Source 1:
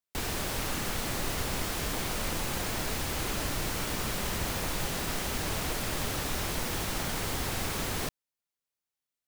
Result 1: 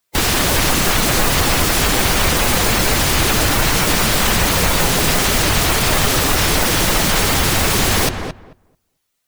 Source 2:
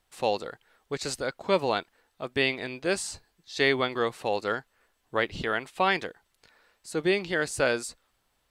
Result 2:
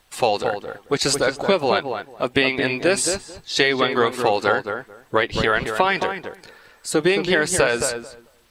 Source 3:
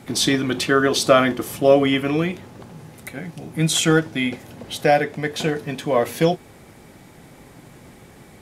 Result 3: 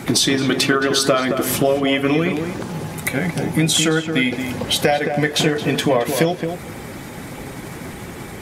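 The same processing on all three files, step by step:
bin magnitudes rounded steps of 15 dB; low shelf 480 Hz -3 dB; compressor 8:1, threshold -29 dBFS; on a send: darkening echo 0.22 s, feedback 16%, low-pass 1600 Hz, level -6 dB; on the sum: normalise peaks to -2 dBFS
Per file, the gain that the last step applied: +19.0, +14.5, +14.5 dB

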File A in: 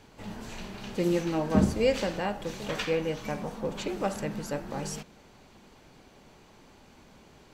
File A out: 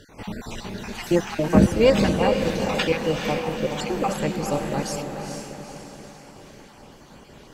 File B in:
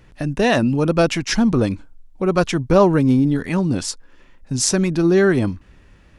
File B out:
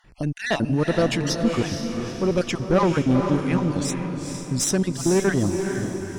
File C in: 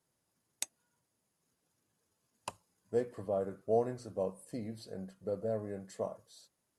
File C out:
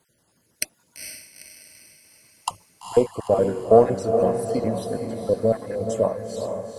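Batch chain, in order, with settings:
random spectral dropouts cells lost 35%; tube stage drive 12 dB, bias 0.4; diffused feedback echo 0.455 s, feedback 49%, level -5.5 dB; match loudness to -23 LUFS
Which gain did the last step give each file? +9.5, -1.0, +17.0 dB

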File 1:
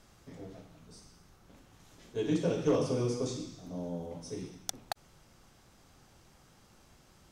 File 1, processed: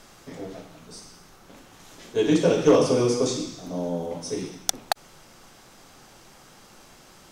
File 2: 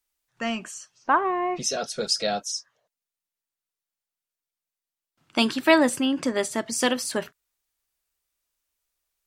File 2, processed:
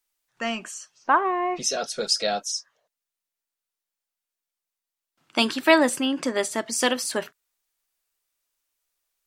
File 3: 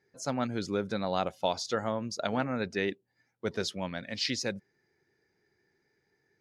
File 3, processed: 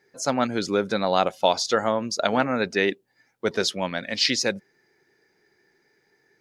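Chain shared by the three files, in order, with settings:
bell 64 Hz -13 dB 2.5 oct; match loudness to -24 LUFS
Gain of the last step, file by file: +12.5, +1.5, +10.0 dB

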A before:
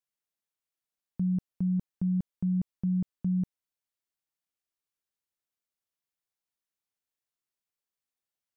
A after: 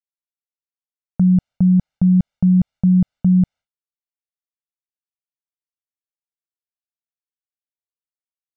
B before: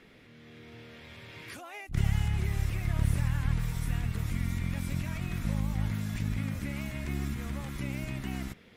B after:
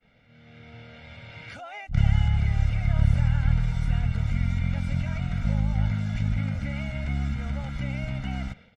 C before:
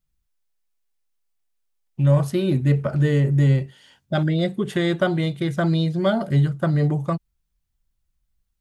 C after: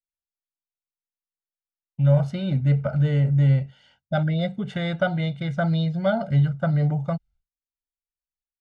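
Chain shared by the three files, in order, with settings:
expander -49 dBFS; air absorption 130 m; comb 1.4 ms, depth 81%; normalise peaks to -9 dBFS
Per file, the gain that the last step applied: +12.5, +2.5, -4.0 dB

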